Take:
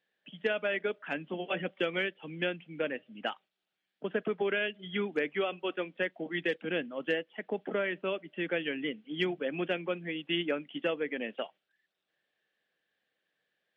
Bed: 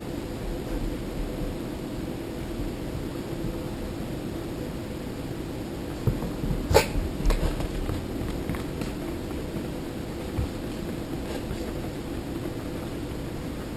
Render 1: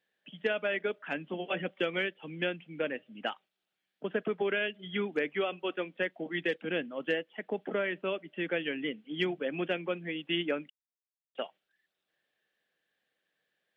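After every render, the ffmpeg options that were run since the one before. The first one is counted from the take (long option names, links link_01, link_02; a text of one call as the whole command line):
ffmpeg -i in.wav -filter_complex "[0:a]asplit=3[link_01][link_02][link_03];[link_01]atrim=end=10.7,asetpts=PTS-STARTPTS,afade=type=out:start_time=10.696:duration=0.004:curve=hsin[link_04];[link_02]atrim=start=10.7:end=11.35,asetpts=PTS-STARTPTS,volume=0[link_05];[link_03]atrim=start=11.35,asetpts=PTS-STARTPTS,afade=type=in:duration=0.004:curve=hsin[link_06];[link_04][link_05][link_06]concat=n=3:v=0:a=1" out.wav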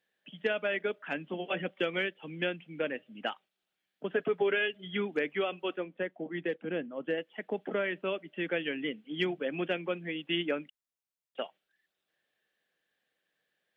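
ffmpeg -i in.wav -filter_complex "[0:a]asettb=1/sr,asplit=3[link_01][link_02][link_03];[link_01]atrim=end=4.124[link_04];[link_02]atrim=start=4.12:end=4.75,asetpts=PTS-STARTPTS,afade=type=in:duration=0.004:curve=qsin,afade=type=out:start_time=0.626:duration=0.004:curve=qsin,aecho=1:1:7.2:0.53,atrim=end_sample=27783[link_05];[link_03]atrim=start=4.746[link_06];[link_04][link_05]acrossfade=duration=0.004:curve1=hsin:curve2=qsin[link_07];[link_07][link_06]acrossfade=duration=0.004:curve1=qsin:curve2=hsin,asettb=1/sr,asplit=3[link_08][link_09][link_10];[link_08]atrim=end=5.774[link_11];[link_09]atrim=start=5.77:end=7.18,asetpts=PTS-STARTPTS,afade=type=in:duration=0.004:curve=qsin,afade=type=out:start_time=1.406:duration=0.004:curve=qsin,lowpass=frequency=1100:poles=1[link_12];[link_10]atrim=start=7.176[link_13];[link_11][link_12]acrossfade=duration=0.004:curve1=hsin:curve2=qsin[link_14];[link_14][link_13]acrossfade=duration=0.004:curve1=qsin:curve2=hsin" out.wav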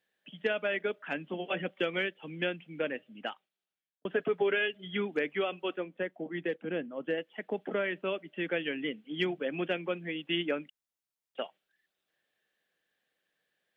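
ffmpeg -i in.wav -filter_complex "[0:a]asplit=2[link_01][link_02];[link_01]atrim=end=4.05,asetpts=PTS-STARTPTS,afade=type=out:start_time=2.97:duration=1.08[link_03];[link_02]atrim=start=4.05,asetpts=PTS-STARTPTS,afade=type=in:duration=0.004:curve=hsin[link_04];[link_03][link_04]concat=n=2:v=0:a=1" out.wav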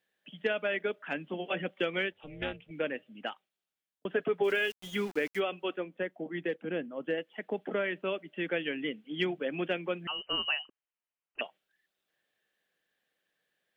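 ffmpeg -i in.wav -filter_complex "[0:a]asettb=1/sr,asplit=3[link_01][link_02][link_03];[link_01]atrim=end=2.124[link_04];[link_02]atrim=start=2.12:end=2.71,asetpts=PTS-STARTPTS,afade=type=in:duration=0.004:curve=qsin,afade=type=out:start_time=0.586:duration=0.004:curve=qsin,tremolo=f=290:d=0.889[link_05];[link_03]atrim=start=2.706[link_06];[link_04][link_05]acrossfade=duration=0.004:curve1=hsin:curve2=qsin[link_07];[link_07][link_06]acrossfade=duration=0.004:curve1=qsin:curve2=hsin,asplit=3[link_08][link_09][link_10];[link_08]afade=type=out:start_time=4.43:duration=0.02[link_11];[link_09]aeval=exprs='val(0)*gte(abs(val(0)),0.00708)':channel_layout=same,afade=type=in:start_time=4.43:duration=0.02,afade=type=out:start_time=5.39:duration=0.02[link_12];[link_10]afade=type=in:start_time=5.39:duration=0.02[link_13];[link_11][link_12][link_13]amix=inputs=3:normalize=0,asettb=1/sr,asplit=3[link_14][link_15][link_16];[link_14]atrim=end=10.074[link_17];[link_15]atrim=start=10.07:end=11.41,asetpts=PTS-STARTPTS,afade=type=in:duration=0.004:curve=qsin,afade=type=out:start_time=1.336:duration=0.004:curve=qsin,lowpass=frequency=2700:width_type=q:width=0.5098,lowpass=frequency=2700:width_type=q:width=0.6013,lowpass=frequency=2700:width_type=q:width=0.9,lowpass=frequency=2700:width_type=q:width=2.563,afreqshift=-3200[link_18];[link_16]atrim=start=11.406[link_19];[link_17][link_18]acrossfade=duration=0.004:curve1=hsin:curve2=qsin[link_20];[link_20][link_19]acrossfade=duration=0.004:curve1=qsin:curve2=hsin" out.wav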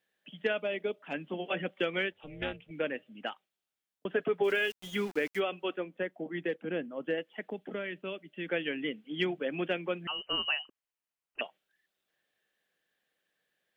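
ffmpeg -i in.wav -filter_complex "[0:a]asettb=1/sr,asplit=3[link_01][link_02][link_03];[link_01]atrim=end=0.604[link_04];[link_02]atrim=start=0.6:end=1.14,asetpts=PTS-STARTPTS,afade=type=in:duration=0.004:curve=qsin,afade=type=out:start_time=0.536:duration=0.004:curve=qsin,equalizer=frequency=1600:width=1.9:gain=-12[link_05];[link_03]atrim=start=1.136[link_06];[link_04][link_05]acrossfade=duration=0.004:curve1=hsin:curve2=qsin[link_07];[link_07][link_06]acrossfade=duration=0.004:curve1=qsin:curve2=hsin,asettb=1/sr,asplit=3[link_08][link_09][link_10];[link_08]atrim=end=7.504[link_11];[link_09]atrim=start=7.5:end=8.48,asetpts=PTS-STARTPTS,afade=type=in:duration=0.004:curve=qsin,afade=type=out:start_time=0.976:duration=0.004:curve=qsin,equalizer=frequency=870:width_type=o:width=3:gain=-8[link_12];[link_10]atrim=start=8.476[link_13];[link_11][link_12]acrossfade=duration=0.004:curve1=hsin:curve2=qsin[link_14];[link_14][link_13]acrossfade=duration=0.004:curve1=qsin:curve2=hsin" out.wav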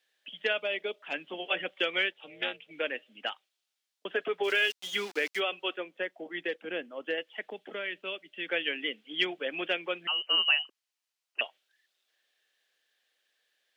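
ffmpeg -i in.wav -af "highpass=390,equalizer=frequency=4500:width_type=o:width=2:gain=10" out.wav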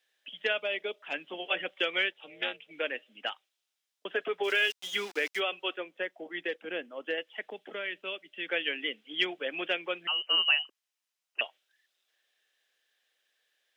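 ffmpeg -i in.wav -af "lowshelf=frequency=170:gain=-7,bandreject=frequency=4400:width=17" out.wav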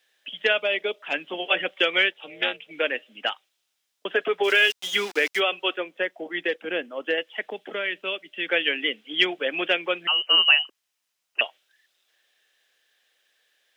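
ffmpeg -i in.wav -af "volume=8dB" out.wav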